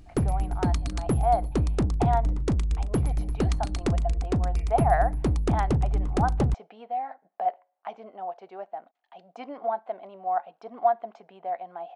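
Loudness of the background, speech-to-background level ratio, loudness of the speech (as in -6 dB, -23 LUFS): -27.5 LUFS, -3.5 dB, -31.0 LUFS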